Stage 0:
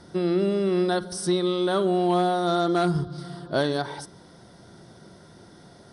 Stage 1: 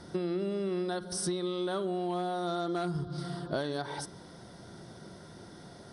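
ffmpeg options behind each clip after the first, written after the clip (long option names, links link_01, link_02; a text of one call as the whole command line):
ffmpeg -i in.wav -af "acompressor=threshold=-30dB:ratio=6" out.wav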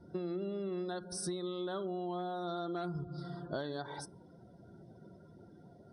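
ffmpeg -i in.wav -af "afftdn=noise_reduction=20:noise_floor=-48,volume=-5.5dB" out.wav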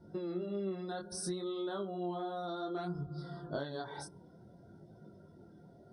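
ffmpeg -i in.wav -af "flanger=delay=19:depth=7.7:speed=0.6,volume=2.5dB" out.wav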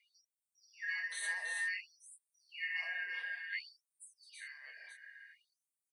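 ffmpeg -i in.wav -af "afftfilt=real='real(if(lt(b,272),68*(eq(floor(b/68),0)*2+eq(floor(b/68),1)*0+eq(floor(b/68),2)*3+eq(floor(b/68),3)*1)+mod(b,68),b),0)':imag='imag(if(lt(b,272),68*(eq(floor(b/68),0)*2+eq(floor(b/68),1)*0+eq(floor(b/68),2)*3+eq(floor(b/68),3)*1)+mod(b,68),b),0)':win_size=2048:overlap=0.75,aecho=1:1:53|215|330|354|393|888:0.316|0.141|0.501|0.376|0.266|0.282,afftfilt=real='re*gte(b*sr/1024,320*pow(7100/320,0.5+0.5*sin(2*PI*0.56*pts/sr)))':imag='im*gte(b*sr/1024,320*pow(7100/320,0.5+0.5*sin(2*PI*0.56*pts/sr)))':win_size=1024:overlap=0.75,volume=-2.5dB" out.wav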